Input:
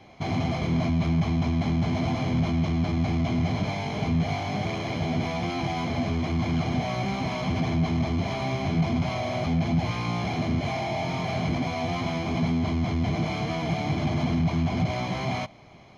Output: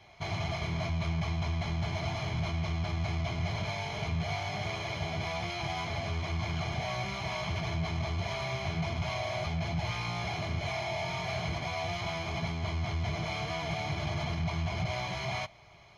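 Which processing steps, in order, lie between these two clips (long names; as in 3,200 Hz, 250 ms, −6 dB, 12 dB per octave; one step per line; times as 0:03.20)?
parametric band 250 Hz −14.5 dB 1.9 octaves
notch comb filter 260 Hz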